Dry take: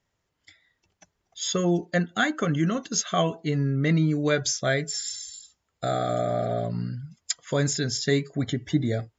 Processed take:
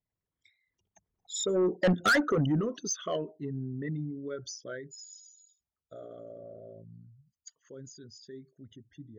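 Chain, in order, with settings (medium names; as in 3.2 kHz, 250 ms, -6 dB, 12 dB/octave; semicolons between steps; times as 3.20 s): resonances exaggerated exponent 2; Doppler pass-by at 2.02 s, 19 m/s, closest 2.8 m; saturation -29 dBFS, distortion -7 dB; trim +9 dB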